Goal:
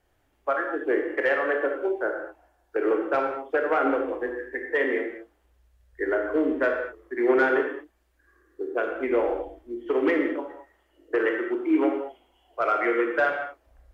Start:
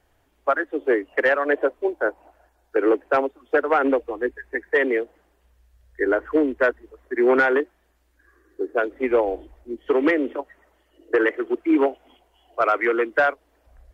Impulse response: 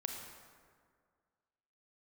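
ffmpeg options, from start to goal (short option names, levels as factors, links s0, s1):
-filter_complex "[1:a]atrim=start_sample=2205,afade=t=out:st=0.41:d=0.01,atrim=end_sample=18522,asetrate=66150,aresample=44100[s0];[0:a][s0]afir=irnorm=-1:irlink=0"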